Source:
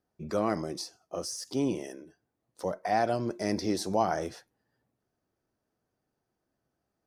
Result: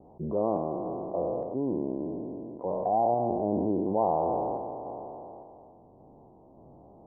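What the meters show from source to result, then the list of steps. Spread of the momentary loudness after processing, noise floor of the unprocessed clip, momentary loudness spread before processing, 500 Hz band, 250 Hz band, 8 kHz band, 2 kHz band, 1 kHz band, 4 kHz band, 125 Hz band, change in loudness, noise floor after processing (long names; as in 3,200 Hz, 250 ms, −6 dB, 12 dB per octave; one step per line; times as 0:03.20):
13 LU, −83 dBFS, 10 LU, +4.0 dB, +2.0 dB, below −40 dB, below −30 dB, +3.5 dB, below −40 dB, +1.0 dB, +1.5 dB, −55 dBFS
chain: peak hold with a decay on every bin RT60 1.74 s
Butterworth low-pass 1,000 Hz 72 dB per octave
low-shelf EQ 350 Hz −4 dB
sample-and-hold tremolo, depth 55%
envelope flattener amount 50%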